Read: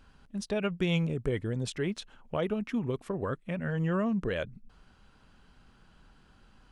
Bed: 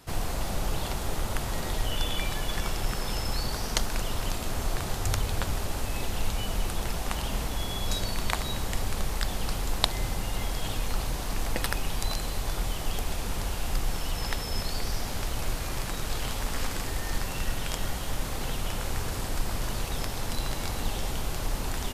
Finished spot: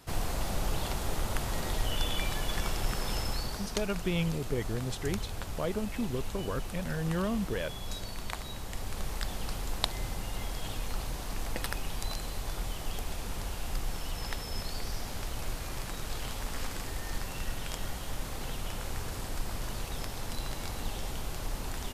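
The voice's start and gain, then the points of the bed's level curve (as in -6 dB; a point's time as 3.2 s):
3.25 s, -2.5 dB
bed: 3.2 s -2 dB
3.81 s -9 dB
8.64 s -9 dB
9.09 s -5.5 dB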